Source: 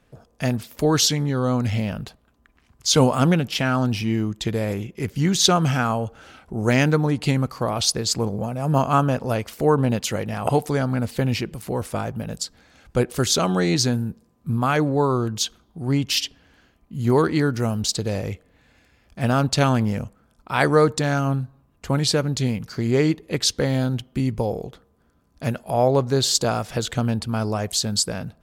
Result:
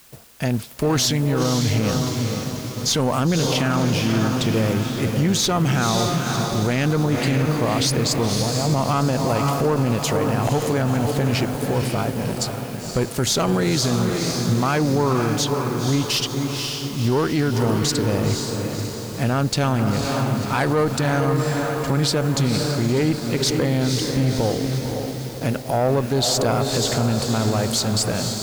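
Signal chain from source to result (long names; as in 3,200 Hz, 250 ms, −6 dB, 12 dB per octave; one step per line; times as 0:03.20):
one-sided soft clipper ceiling −14 dBFS
background noise white −49 dBFS
on a send: feedback delay with all-pass diffusion 517 ms, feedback 54%, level −6 dB
on the sum: leveller curve on the samples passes 1
brickwall limiter −11 dBFS, peak gain reduction 7.5 dB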